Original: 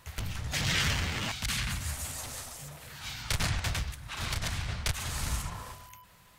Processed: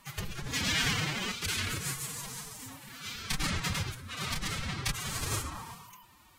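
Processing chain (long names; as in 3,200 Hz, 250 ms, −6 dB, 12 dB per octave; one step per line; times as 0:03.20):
phase-vocoder pitch shift with formants kept +10.5 semitones
hum removal 58.64 Hz, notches 28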